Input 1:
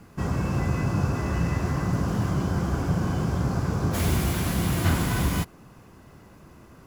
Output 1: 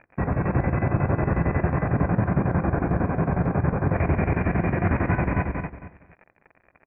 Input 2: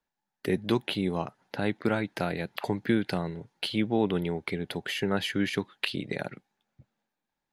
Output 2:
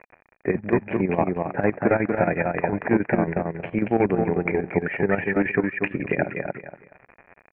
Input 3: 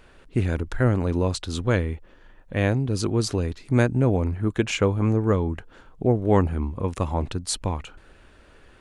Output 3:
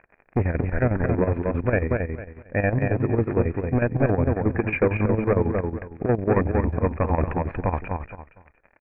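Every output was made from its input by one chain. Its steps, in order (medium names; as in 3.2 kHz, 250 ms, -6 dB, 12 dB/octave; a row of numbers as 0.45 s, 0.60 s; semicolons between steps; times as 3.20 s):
gate -41 dBFS, range -23 dB; in parallel at +1.5 dB: gain riding 0.5 s; on the sum: hard clipper -12 dBFS; on a send: feedback delay 234 ms, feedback 25%, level -4 dB; on the sum: crackle 93 per s -27 dBFS; rippled Chebyshev low-pass 2.5 kHz, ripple 6 dB; square tremolo 11 Hz, depth 65%, duty 65%; normalise loudness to -24 LUFS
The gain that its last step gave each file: +1.0 dB, +5.0 dB, +1.0 dB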